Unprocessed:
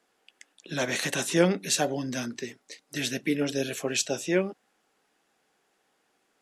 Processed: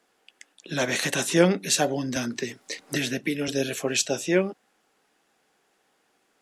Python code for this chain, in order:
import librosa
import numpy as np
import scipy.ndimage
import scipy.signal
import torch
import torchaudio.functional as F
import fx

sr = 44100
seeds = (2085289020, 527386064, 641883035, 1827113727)

y = fx.band_squash(x, sr, depth_pct=100, at=(2.16, 3.48))
y = y * librosa.db_to_amplitude(3.0)